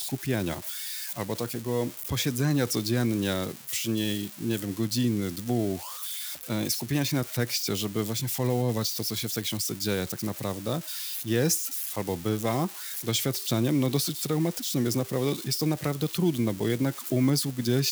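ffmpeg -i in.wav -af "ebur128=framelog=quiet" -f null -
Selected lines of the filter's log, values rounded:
Integrated loudness:
  I:         -28.1 LUFS
  Threshold: -38.1 LUFS
Loudness range:
  LRA:         2.0 LU
  Threshold: -48.1 LUFS
  LRA low:   -29.0 LUFS
  LRA high:  -27.0 LUFS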